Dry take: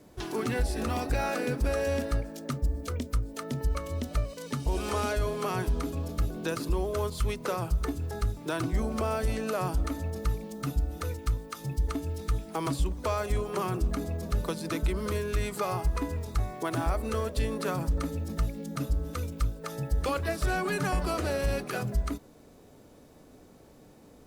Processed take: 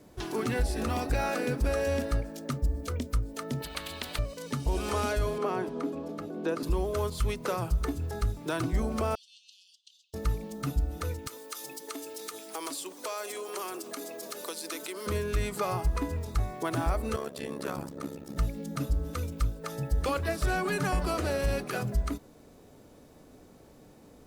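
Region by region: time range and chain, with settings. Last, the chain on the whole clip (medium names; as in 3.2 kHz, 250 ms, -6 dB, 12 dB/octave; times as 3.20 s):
3.62–4.19 s: resonant high shelf 4.7 kHz -7 dB, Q 3 + spectrum-flattening compressor 4:1
5.38–6.63 s: Bessel high-pass 360 Hz, order 4 + tilt EQ -4 dB/octave
9.15–10.14 s: compression 2:1, threshold -29 dBFS + steep high-pass 2.9 kHz 96 dB/octave + distance through air 160 m
11.27–15.07 s: high-pass 310 Hz 24 dB/octave + treble shelf 3.1 kHz +11.5 dB + compression 2:1, threshold -37 dBFS
17.16–18.36 s: high-pass 150 Hz 24 dB/octave + AM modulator 69 Hz, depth 85%
whole clip: none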